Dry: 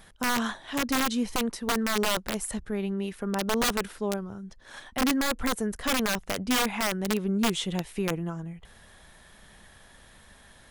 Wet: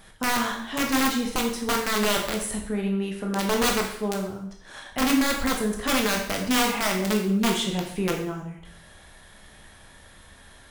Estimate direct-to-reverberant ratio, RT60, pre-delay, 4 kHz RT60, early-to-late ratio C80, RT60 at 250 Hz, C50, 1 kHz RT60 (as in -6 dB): 0.5 dB, 0.65 s, 7 ms, 0.60 s, 8.5 dB, 0.70 s, 5.5 dB, 0.70 s